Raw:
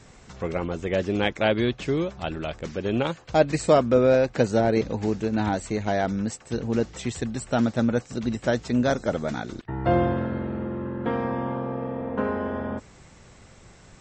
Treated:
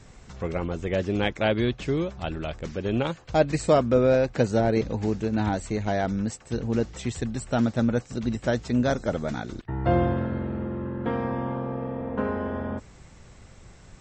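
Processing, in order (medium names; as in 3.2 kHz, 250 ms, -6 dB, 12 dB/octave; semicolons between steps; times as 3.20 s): bass shelf 100 Hz +8 dB; trim -2 dB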